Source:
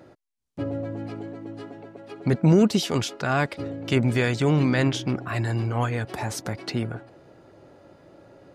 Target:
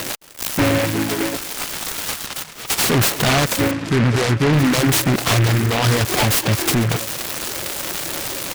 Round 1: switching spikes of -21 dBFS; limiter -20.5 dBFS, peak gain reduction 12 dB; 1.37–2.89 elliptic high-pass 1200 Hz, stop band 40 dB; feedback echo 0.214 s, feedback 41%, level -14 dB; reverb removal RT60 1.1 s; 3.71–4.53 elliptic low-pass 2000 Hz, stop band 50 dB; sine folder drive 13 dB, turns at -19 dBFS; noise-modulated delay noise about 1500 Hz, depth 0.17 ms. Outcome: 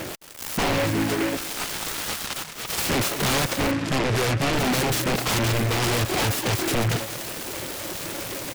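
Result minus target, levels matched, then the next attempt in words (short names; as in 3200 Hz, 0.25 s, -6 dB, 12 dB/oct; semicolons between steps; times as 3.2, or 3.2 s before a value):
sine folder: distortion +19 dB
switching spikes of -21 dBFS; limiter -20.5 dBFS, peak gain reduction 12 dB; 1.37–2.89 elliptic high-pass 1200 Hz, stop band 40 dB; feedback echo 0.214 s, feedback 41%, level -14 dB; reverb removal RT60 1.1 s; 3.71–4.53 elliptic low-pass 2000 Hz, stop band 50 dB; sine folder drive 13 dB, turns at -11.5 dBFS; noise-modulated delay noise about 1500 Hz, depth 0.17 ms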